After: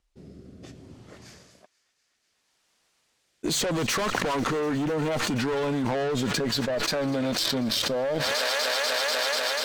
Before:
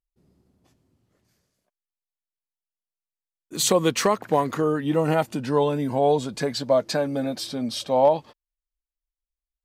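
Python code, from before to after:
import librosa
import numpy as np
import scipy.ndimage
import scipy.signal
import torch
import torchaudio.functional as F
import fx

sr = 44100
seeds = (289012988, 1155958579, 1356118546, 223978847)

p1 = fx.doppler_pass(x, sr, speed_mps=8, closest_m=4.9, pass_at_s=3.8)
p2 = scipy.signal.sosfilt(scipy.signal.butter(2, 7300.0, 'lowpass', fs=sr, output='sos'), p1)
p3 = fx.low_shelf(p2, sr, hz=210.0, db=-4.0)
p4 = fx.leveller(p3, sr, passes=2)
p5 = fx.rider(p4, sr, range_db=5, speed_s=0.5)
p6 = p4 + (p5 * librosa.db_to_amplitude(-0.5))
p7 = fx.rotary(p6, sr, hz=0.65)
p8 = fx.tube_stage(p7, sr, drive_db=23.0, bias=0.25)
p9 = fx.echo_wet_highpass(p8, sr, ms=245, feedback_pct=84, hz=1500.0, wet_db=-20.5)
p10 = fx.env_flatten(p9, sr, amount_pct=100)
y = p10 * librosa.db_to_amplitude(-2.5)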